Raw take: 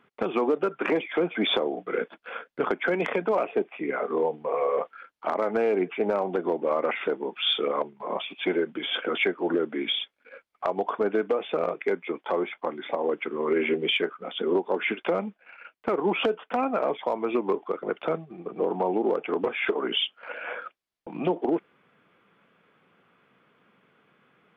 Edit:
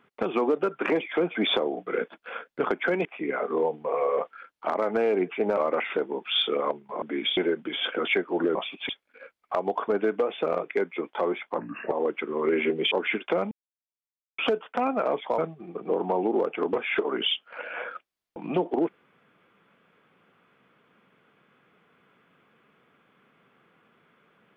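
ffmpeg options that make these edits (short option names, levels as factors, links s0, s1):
-filter_complex "[0:a]asplit=13[s0][s1][s2][s3][s4][s5][s6][s7][s8][s9][s10][s11][s12];[s0]atrim=end=3.052[s13];[s1]atrim=start=3.648:end=6.172[s14];[s2]atrim=start=6.678:end=8.132[s15];[s3]atrim=start=9.648:end=10.002[s16];[s4]atrim=start=8.468:end=9.652[s17];[s5]atrim=start=8.128:end=8.472[s18];[s6]atrim=start=9.998:end=12.694[s19];[s7]atrim=start=12.69:end=12.95,asetpts=PTS-STARTPTS,asetrate=34398,aresample=44100[s20];[s8]atrim=start=12.946:end=13.952[s21];[s9]atrim=start=14.678:end=15.28,asetpts=PTS-STARTPTS,afade=t=out:st=0.598:d=0.004:c=hsin[s22];[s10]atrim=start=15.28:end=16.15,asetpts=PTS-STARTPTS,volume=0[s23];[s11]atrim=start=16.15:end=17.152,asetpts=PTS-STARTPTS,afade=t=in:d=0.004:c=hsin[s24];[s12]atrim=start=18.088[s25];[s13][s14]acrossfade=d=0.004:c1=hsin:c2=hsin[s26];[s26][s15]acrossfade=d=0.004:c1=hsin:c2=hsin[s27];[s27][s16]acrossfade=d=0.004:c1=hsin:c2=hsin[s28];[s28][s17]acrossfade=d=0.004:c1=hsin:c2=hsin[s29];[s29][s18]acrossfade=d=0.004:c1=hsin:c2=hsin[s30];[s30][s19]acrossfade=d=0.004:c1=hsin:c2=hsin[s31];[s31][s20]acrossfade=d=0.004:c1=hsin:c2=hsin[s32];[s32][s21]acrossfade=d=0.004:c1=hsin:c2=hsin[s33];[s22][s23][s24]concat=n=3:v=0:a=1[s34];[s33][s34]acrossfade=d=0.004:c1=hsin:c2=hsin[s35];[s35][s25]acrossfade=d=0.004:c1=hsin:c2=hsin"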